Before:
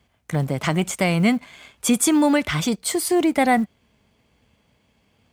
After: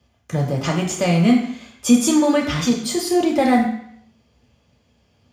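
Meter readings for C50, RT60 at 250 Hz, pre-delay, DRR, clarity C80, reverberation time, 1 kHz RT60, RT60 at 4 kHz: 6.5 dB, 0.65 s, 3 ms, -1.0 dB, 9.0 dB, 0.65 s, 0.70 s, 0.70 s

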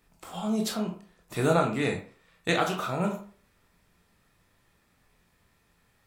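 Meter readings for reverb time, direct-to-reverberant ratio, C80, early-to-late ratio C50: 0.45 s, 1.5 dB, 13.0 dB, 8.0 dB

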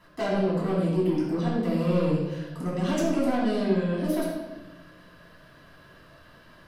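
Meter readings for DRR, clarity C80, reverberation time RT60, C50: -7.0 dB, 3.0 dB, 1.2 s, 0.5 dB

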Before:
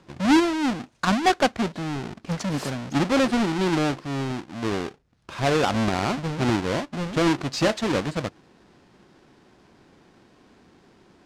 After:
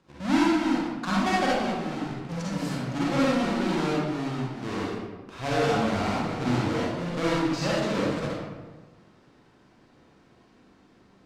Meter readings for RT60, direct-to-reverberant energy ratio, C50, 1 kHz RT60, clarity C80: 1.3 s, -7.0 dB, -3.5 dB, 1.3 s, 1.0 dB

